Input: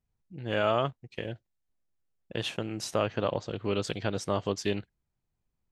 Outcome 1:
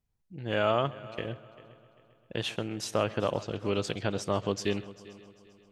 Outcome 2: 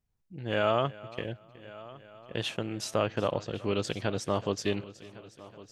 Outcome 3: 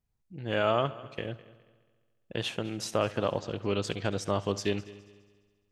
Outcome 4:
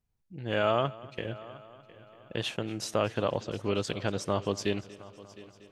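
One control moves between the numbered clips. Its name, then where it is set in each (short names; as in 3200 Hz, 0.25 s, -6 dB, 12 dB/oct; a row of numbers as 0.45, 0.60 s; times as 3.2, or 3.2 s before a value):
multi-head echo, time: 132, 369, 69, 237 ms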